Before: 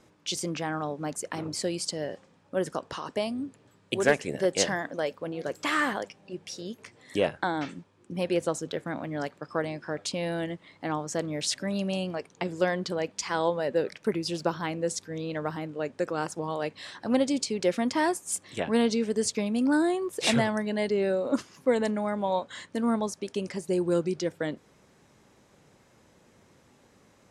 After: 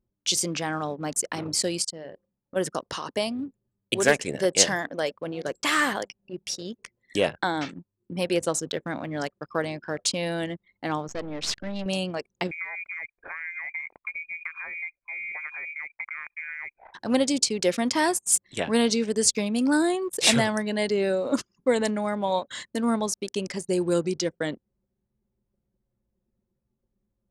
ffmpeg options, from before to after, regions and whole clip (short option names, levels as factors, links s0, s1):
-filter_complex "[0:a]asettb=1/sr,asplit=3[s0][s1][s2];[s0]atrim=end=1.824[s3];[s1]atrim=start=1.82:end=2.56,asetpts=PTS-STARTPTS,afade=t=in:d=0.004:c=qsin,afade=t=out:st=0.736:d=0.004:c=qsin,acompressor=threshold=0.00794:ratio=2:attack=3.2:release=140:knee=1:detection=peak,bandreject=f=50:t=h:w=6,bandreject=f=100:t=h:w=6,bandreject=f=150:t=h:w=6,bandreject=f=200:t=h:w=6,bandreject=f=250:t=h:w=6,bandreject=f=300:t=h:w=6,bandreject=f=350:t=h:w=6,bandreject=f=400:t=h:w=6,bandreject=f=450:t=h:w=6[s4];[s2]atrim=start=2.556[s5];[s3][s4]acrossfade=d=0.004:c1=hsin:c2=qsin[s6];[s6][s5]acrossfade=d=0.004:c1=qsin:c2=hsin,asettb=1/sr,asplit=3[s7][s8][s9];[s7]atrim=end=11.084[s10];[s8]atrim=start=11.08:end=11.86,asetpts=PTS-STARTPTS,afade=t=in:d=0.004:c=qsin,afade=t=out:st=0.776:d=0.004:c=qsin,aeval=exprs='if(lt(val(0),0),0.251*val(0),val(0))':c=same,lowpass=4800[s11];[s9]atrim=start=11.856[s12];[s10][s11]acrossfade=d=0.004:c1=hsin:c2=qsin[s13];[s13][s12]acrossfade=d=0.004:c1=qsin:c2=hsin,asettb=1/sr,asplit=3[s14][s15][s16];[s14]atrim=end=12.514[s17];[s15]atrim=start=12.51:end=16.94,asetpts=PTS-STARTPTS,afade=t=in:d=0.004:c=qsin,afade=t=out:st=4.426:d=0.004:c=qsin,acompressor=threshold=0.0178:ratio=5:attack=3.2:release=140:knee=1:detection=peak,aeval=exprs='sgn(val(0))*max(abs(val(0))-0.00106,0)':c=same,lowpass=f=2200:t=q:w=0.5098,lowpass=f=2200:t=q:w=0.6013,lowpass=f=2200:t=q:w=0.9,lowpass=f=2200:t=q:w=2.563,afreqshift=-2600[s18];[s16]atrim=start=16.936[s19];[s17][s18]acrossfade=d=0.004:c1=hsin:c2=qsin[s20];[s20][s19]acrossfade=d=0.004:c1=qsin:c2=hsin,anlmdn=0.1,highshelf=f=3200:g=9.5,volume=1.19"